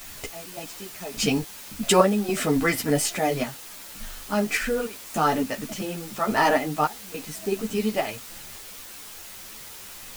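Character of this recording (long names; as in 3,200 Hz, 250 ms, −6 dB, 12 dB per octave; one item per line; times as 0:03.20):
sample-and-hold tremolo, depth 100%
a quantiser's noise floor 8 bits, dither triangular
a shimmering, thickened sound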